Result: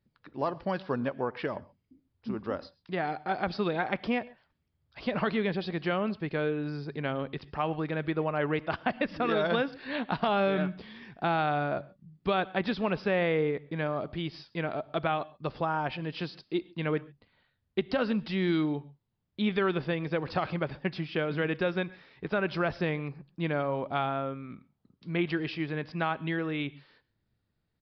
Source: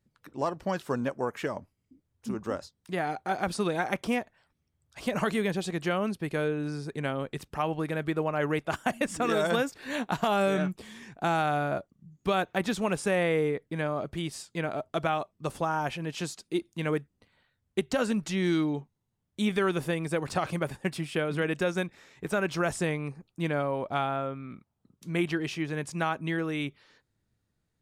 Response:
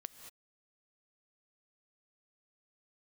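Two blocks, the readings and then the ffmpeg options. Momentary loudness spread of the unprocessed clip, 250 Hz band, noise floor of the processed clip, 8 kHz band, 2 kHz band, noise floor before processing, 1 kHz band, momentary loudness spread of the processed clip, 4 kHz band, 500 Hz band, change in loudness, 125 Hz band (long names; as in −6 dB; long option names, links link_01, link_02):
9 LU, −1.0 dB, −79 dBFS, below −25 dB, −1.0 dB, −79 dBFS, −1.0 dB, 9 LU, −1.0 dB, −1.0 dB, −1.0 dB, −1.0 dB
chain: -filter_complex "[0:a]asplit=2[link_01][link_02];[1:a]atrim=start_sample=2205,afade=type=out:start_time=0.19:duration=0.01,atrim=end_sample=8820[link_03];[link_02][link_03]afir=irnorm=-1:irlink=0,volume=9dB[link_04];[link_01][link_04]amix=inputs=2:normalize=0,aresample=11025,aresample=44100,volume=-9dB"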